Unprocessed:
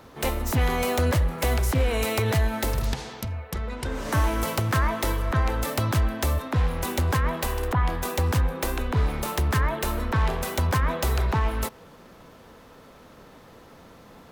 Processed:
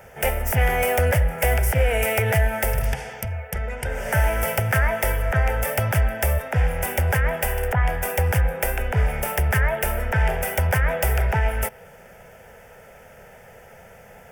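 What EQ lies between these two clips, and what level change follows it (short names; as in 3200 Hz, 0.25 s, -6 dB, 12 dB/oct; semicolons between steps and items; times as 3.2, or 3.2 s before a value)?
dynamic EQ 6900 Hz, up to -7 dB, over -54 dBFS, Q 3.1; low shelf 400 Hz -4.5 dB; fixed phaser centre 1100 Hz, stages 6; +8.0 dB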